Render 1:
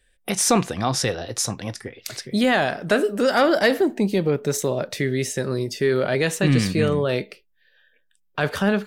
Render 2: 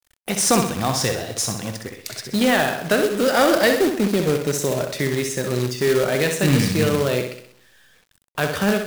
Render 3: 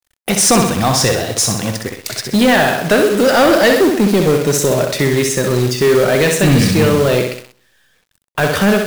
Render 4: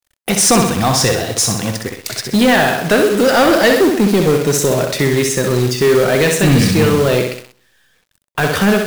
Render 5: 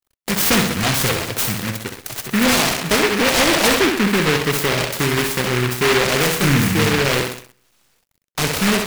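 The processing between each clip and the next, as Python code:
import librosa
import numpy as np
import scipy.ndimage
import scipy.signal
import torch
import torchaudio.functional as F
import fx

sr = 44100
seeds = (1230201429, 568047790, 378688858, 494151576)

y1 = fx.room_flutter(x, sr, wall_m=11.0, rt60_s=0.6)
y1 = fx.quant_companded(y1, sr, bits=4)
y2 = fx.leveller(y1, sr, passes=2)
y2 = F.gain(torch.from_numpy(y2), 2.0).numpy()
y3 = fx.notch(y2, sr, hz=590.0, q=16.0)
y4 = fx.noise_mod_delay(y3, sr, seeds[0], noise_hz=1700.0, depth_ms=0.3)
y4 = F.gain(torch.from_numpy(y4), -4.5).numpy()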